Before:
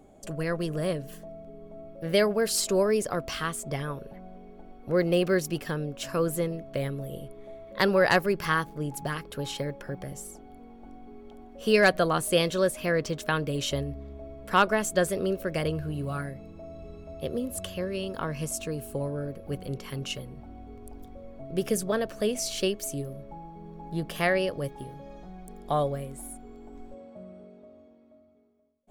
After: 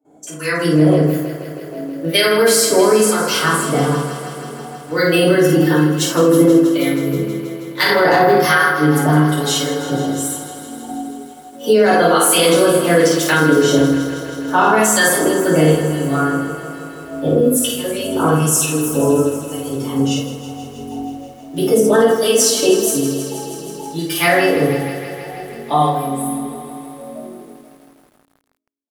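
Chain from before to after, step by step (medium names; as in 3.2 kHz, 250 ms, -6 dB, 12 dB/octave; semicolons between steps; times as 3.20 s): gate with hold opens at -45 dBFS; high-pass 200 Hz 12 dB/octave; treble shelf 4 kHz +8.5 dB; on a send: early reflections 19 ms -10 dB, 52 ms -4.5 dB; on the sum: harmonic tremolo 1.1 Hz, depth 70%, crossover 1.3 kHz; spectral noise reduction 10 dB; FDN reverb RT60 0.63 s, low-frequency decay 1.6×, high-frequency decay 0.4×, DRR -9 dB; loudness maximiser +10 dB; bit-crushed delay 160 ms, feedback 80%, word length 7-bit, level -12.5 dB; trim -3 dB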